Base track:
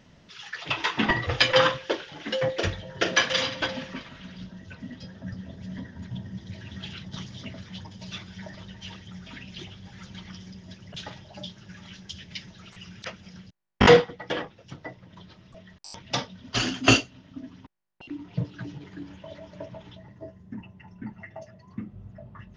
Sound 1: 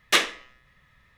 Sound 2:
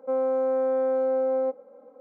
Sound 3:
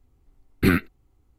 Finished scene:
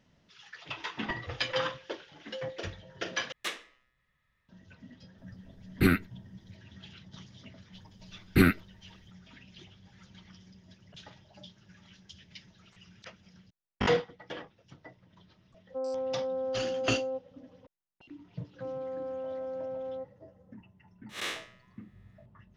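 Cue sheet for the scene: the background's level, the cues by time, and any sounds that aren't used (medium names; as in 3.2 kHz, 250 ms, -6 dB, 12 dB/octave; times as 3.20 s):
base track -11.5 dB
3.32 s: replace with 1 -16 dB
5.18 s: add 3 -4.5 dB
7.73 s: add 3 -2.5 dB
15.67 s: add 2 -8.5 dB + low-pass 1.1 kHz
18.53 s: add 2 -13 dB
21.09 s: add 1 -9 dB + spectral blur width 137 ms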